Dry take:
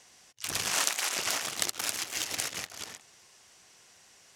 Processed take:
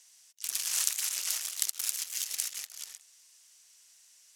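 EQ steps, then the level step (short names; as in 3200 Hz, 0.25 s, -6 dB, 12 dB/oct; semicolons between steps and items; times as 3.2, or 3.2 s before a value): pre-emphasis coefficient 0.97; notch 820 Hz, Q 18; +1.0 dB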